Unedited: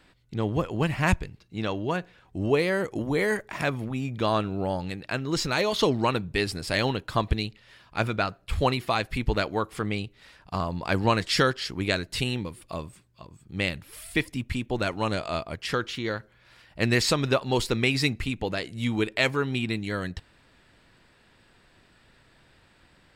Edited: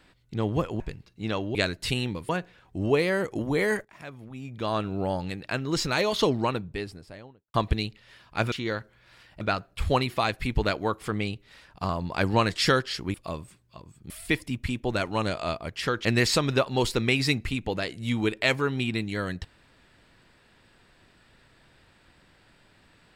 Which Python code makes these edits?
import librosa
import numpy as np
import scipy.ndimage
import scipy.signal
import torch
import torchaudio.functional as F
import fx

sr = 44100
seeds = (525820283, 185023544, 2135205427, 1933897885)

y = fx.studio_fade_out(x, sr, start_s=5.67, length_s=1.47)
y = fx.edit(y, sr, fx.cut(start_s=0.8, length_s=0.34),
    fx.fade_in_from(start_s=3.45, length_s=1.11, curve='qua', floor_db=-16.5),
    fx.move(start_s=11.85, length_s=0.74, to_s=1.89),
    fx.cut(start_s=13.55, length_s=0.41),
    fx.move(start_s=15.91, length_s=0.89, to_s=8.12), tone=tone)